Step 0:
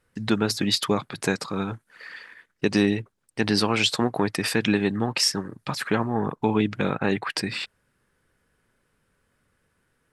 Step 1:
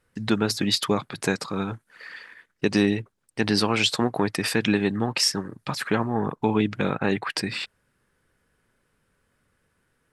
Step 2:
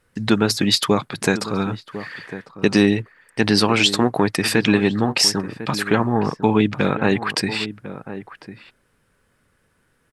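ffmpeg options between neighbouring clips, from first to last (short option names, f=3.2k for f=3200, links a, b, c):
-af anull
-filter_complex "[0:a]asplit=2[a][b];[b]adelay=1050,volume=-13dB,highshelf=f=4k:g=-23.6[c];[a][c]amix=inputs=2:normalize=0,volume=5.5dB"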